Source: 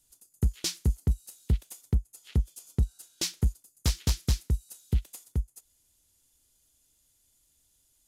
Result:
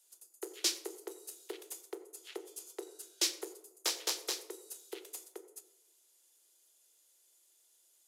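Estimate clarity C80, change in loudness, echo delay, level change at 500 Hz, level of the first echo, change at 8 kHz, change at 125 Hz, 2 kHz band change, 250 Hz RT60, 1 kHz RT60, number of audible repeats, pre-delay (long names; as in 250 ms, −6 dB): 14.5 dB, −7.5 dB, no echo audible, +1.0 dB, no echo audible, 0.0 dB, below −40 dB, 0.0 dB, 1.1 s, 0.85 s, no echo audible, 13 ms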